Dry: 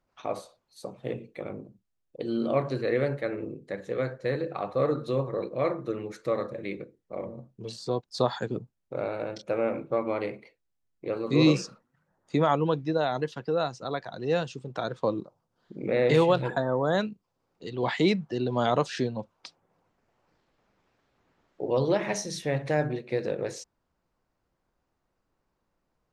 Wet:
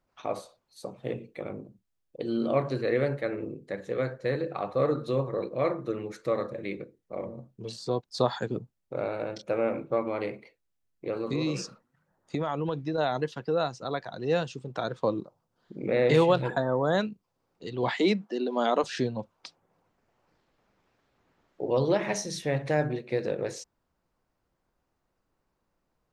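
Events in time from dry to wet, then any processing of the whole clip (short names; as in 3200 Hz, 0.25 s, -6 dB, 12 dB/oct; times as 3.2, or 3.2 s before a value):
10.02–12.98 compressor, threshold -25 dBFS
17.92–18.84 elliptic high-pass 200 Hz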